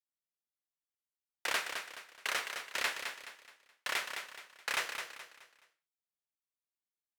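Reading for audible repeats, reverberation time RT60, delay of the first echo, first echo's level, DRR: 4, no reverb, 212 ms, -7.0 dB, no reverb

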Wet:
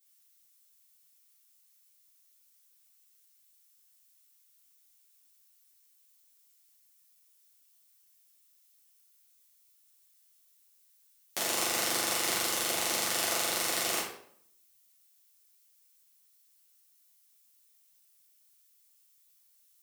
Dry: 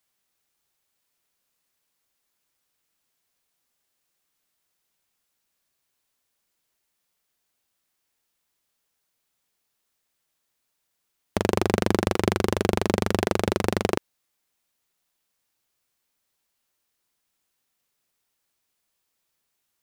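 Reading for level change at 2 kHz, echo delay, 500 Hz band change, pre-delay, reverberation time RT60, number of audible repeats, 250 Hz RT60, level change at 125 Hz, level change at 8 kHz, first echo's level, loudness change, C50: -2.0 dB, no echo, -13.5 dB, 6 ms, 0.65 s, no echo, 0.70 s, -23.5 dB, +8.5 dB, no echo, -4.0 dB, 3.5 dB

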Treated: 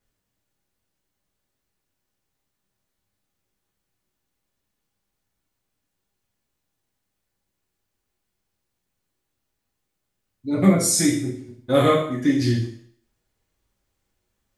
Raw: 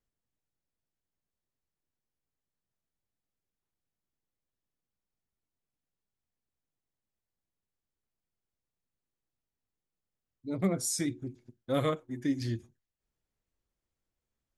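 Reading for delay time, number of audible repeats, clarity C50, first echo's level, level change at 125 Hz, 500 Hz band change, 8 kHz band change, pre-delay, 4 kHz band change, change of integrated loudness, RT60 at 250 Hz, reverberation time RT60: no echo, no echo, 5.5 dB, no echo, +12.0 dB, +12.5 dB, +12.5 dB, 3 ms, +12.5 dB, +12.5 dB, 0.50 s, 0.60 s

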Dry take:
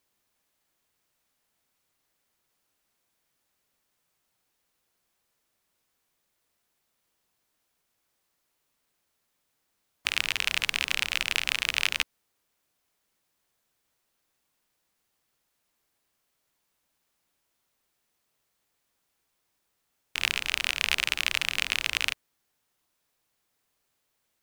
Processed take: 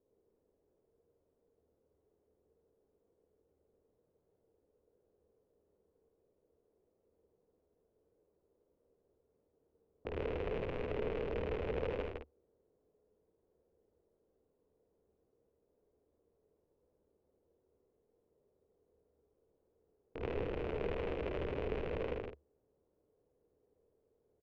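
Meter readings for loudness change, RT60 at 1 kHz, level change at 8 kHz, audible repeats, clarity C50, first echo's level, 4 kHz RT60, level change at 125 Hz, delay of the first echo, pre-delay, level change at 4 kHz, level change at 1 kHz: -13.0 dB, no reverb, under -40 dB, 3, no reverb, -5.0 dB, no reverb, +8.0 dB, 51 ms, no reverb, -29.0 dB, -7.0 dB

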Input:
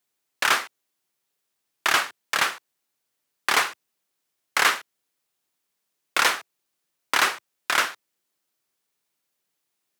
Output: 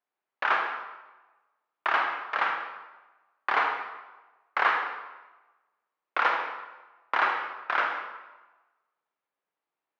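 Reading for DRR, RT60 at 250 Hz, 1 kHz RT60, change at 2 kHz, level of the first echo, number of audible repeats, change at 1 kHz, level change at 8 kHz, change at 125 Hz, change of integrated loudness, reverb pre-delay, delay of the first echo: 2.5 dB, 1.1 s, 1.2 s, -4.0 dB, no echo, no echo, 0.0 dB, under -30 dB, no reading, -4.5 dB, 36 ms, no echo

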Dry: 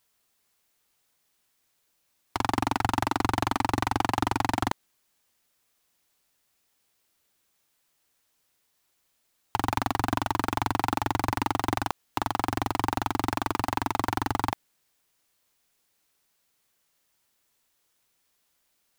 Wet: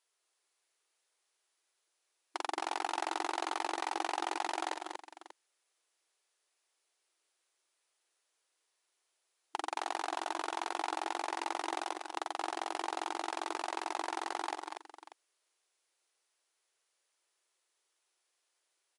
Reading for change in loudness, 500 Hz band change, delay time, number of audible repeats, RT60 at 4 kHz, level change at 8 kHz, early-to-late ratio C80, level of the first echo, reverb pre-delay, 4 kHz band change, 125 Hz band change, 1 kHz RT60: -9.0 dB, -6.5 dB, 46 ms, 3, no reverb, -5.5 dB, no reverb, -13.0 dB, no reverb, -6.0 dB, under -40 dB, no reverb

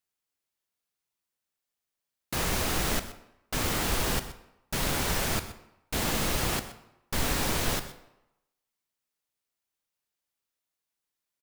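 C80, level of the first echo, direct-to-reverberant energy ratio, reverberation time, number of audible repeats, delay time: 13.0 dB, -16.0 dB, 10.0 dB, 0.90 s, 1, 125 ms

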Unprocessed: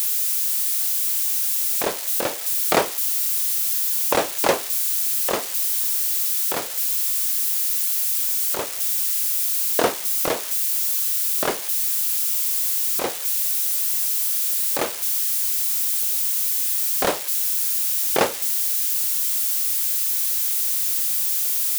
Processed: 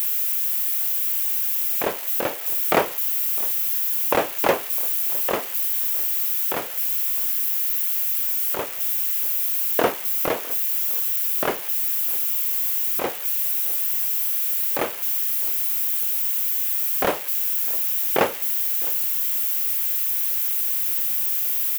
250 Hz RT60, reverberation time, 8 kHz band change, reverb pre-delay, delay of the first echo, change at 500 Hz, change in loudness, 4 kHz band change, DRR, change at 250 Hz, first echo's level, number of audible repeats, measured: no reverb, no reverb, -7.5 dB, no reverb, 657 ms, 0.0 dB, -1.0 dB, -5.5 dB, no reverb, 0.0 dB, -21.5 dB, 1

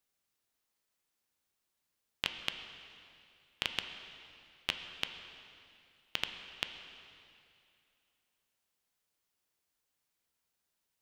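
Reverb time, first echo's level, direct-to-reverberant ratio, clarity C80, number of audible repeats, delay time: 2.6 s, no echo, 6.0 dB, 8.5 dB, no echo, no echo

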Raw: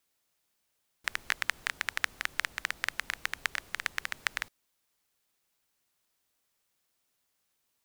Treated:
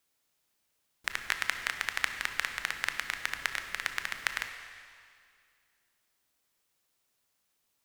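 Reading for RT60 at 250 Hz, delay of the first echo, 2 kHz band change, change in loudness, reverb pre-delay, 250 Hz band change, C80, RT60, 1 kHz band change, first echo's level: 2.2 s, no echo, +1.0 dB, +1.0 dB, 22 ms, +1.0 dB, 8.5 dB, 2.2 s, +1.0 dB, no echo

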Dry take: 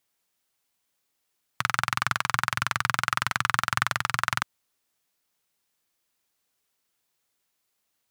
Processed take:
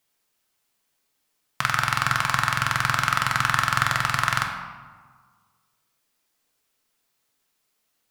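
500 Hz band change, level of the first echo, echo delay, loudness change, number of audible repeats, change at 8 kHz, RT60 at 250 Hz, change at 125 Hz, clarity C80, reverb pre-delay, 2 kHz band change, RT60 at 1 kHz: +4.5 dB, no echo, no echo, +4.0 dB, no echo, +3.0 dB, 1.7 s, +6.5 dB, 7.0 dB, 4 ms, +3.5 dB, 1.6 s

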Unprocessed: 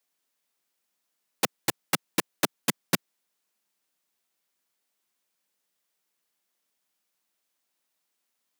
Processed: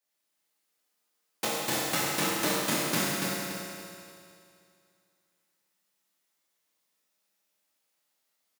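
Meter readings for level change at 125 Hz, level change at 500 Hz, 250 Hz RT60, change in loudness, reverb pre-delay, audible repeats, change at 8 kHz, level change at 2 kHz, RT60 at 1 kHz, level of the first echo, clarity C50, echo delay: +1.5 dB, +2.5 dB, 2.4 s, +0.5 dB, 13 ms, 1, +2.0 dB, +2.0 dB, 2.5 s, -4.5 dB, -5.0 dB, 287 ms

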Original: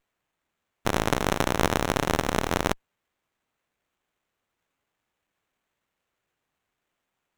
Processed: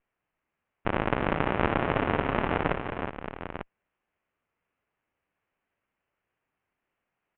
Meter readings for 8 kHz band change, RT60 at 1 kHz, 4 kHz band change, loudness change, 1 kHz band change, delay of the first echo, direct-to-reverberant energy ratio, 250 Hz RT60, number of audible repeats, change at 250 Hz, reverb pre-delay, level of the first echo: under -40 dB, no reverb, -9.5 dB, -2.5 dB, -1.0 dB, 61 ms, no reverb, no reverb, 4, -1.0 dB, no reverb, -10.0 dB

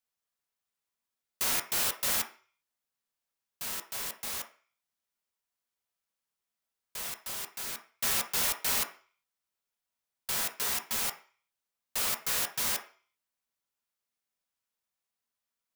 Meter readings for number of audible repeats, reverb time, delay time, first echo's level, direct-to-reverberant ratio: no echo, 0.40 s, no echo, no echo, 3.0 dB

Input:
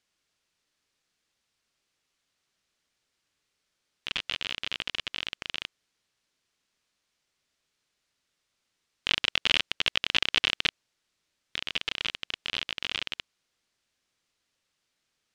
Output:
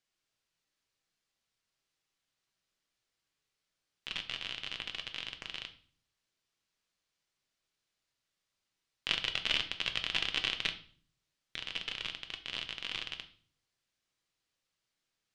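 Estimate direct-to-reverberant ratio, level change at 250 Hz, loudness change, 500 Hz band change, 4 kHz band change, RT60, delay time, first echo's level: 6.0 dB, -6.5 dB, -6.5 dB, -6.5 dB, -6.0 dB, 0.50 s, no echo, no echo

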